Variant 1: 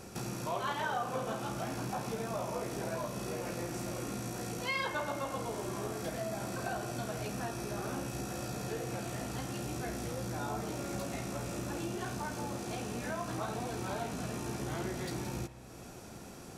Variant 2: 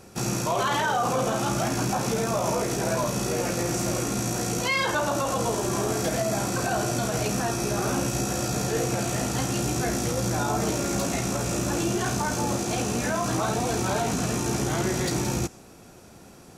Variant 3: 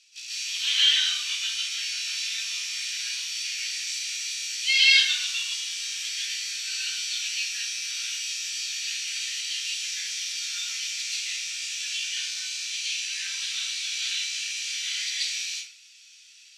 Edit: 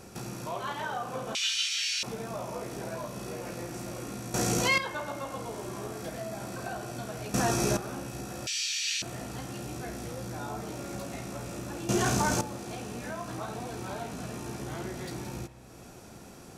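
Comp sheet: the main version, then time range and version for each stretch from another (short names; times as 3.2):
1
1.35–2.03 from 3
4.34–4.78 from 2
7.34–7.77 from 2
8.47–9.02 from 3
11.89–12.41 from 2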